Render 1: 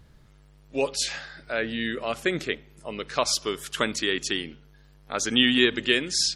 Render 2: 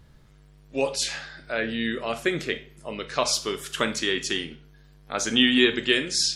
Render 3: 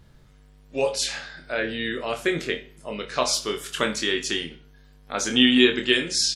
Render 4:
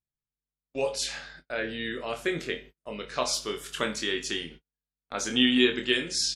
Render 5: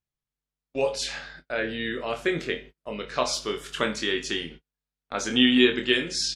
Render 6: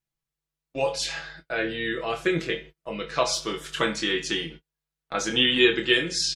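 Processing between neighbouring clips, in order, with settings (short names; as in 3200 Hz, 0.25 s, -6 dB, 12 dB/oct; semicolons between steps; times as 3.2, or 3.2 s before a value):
reverb RT60 0.40 s, pre-delay 5 ms, DRR 8 dB
doubler 24 ms -6 dB
gate -41 dBFS, range -39 dB; gain -5 dB
high shelf 8100 Hz -12 dB; gain +3.5 dB
comb 6.1 ms, depth 71%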